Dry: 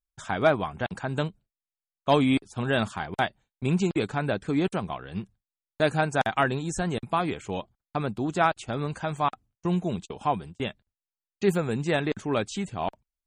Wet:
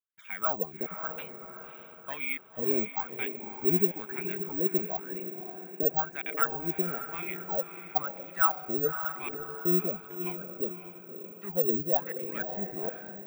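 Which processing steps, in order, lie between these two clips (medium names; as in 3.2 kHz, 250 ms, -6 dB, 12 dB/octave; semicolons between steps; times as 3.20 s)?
peaking EQ 180 Hz +14 dB 1.2 oct; in parallel at -0.5 dB: peak limiter -13 dBFS, peak gain reduction 10 dB; on the sum: wah-wah 1 Hz 360–2400 Hz, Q 10; short-mantissa float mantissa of 8-bit; on a send: echo that smears into a reverb 568 ms, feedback 44%, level -9 dB; on the sum: careless resampling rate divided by 2×, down filtered, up zero stuff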